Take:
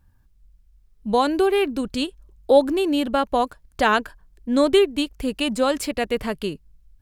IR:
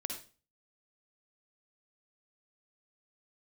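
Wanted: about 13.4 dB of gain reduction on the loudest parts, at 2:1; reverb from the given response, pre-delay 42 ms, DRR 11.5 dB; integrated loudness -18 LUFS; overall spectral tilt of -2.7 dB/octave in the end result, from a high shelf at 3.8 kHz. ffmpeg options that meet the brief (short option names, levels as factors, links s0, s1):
-filter_complex "[0:a]highshelf=f=3800:g=3,acompressor=threshold=0.0178:ratio=2,asplit=2[s0][s1];[1:a]atrim=start_sample=2205,adelay=42[s2];[s1][s2]afir=irnorm=-1:irlink=0,volume=0.266[s3];[s0][s3]amix=inputs=2:normalize=0,volume=4.73"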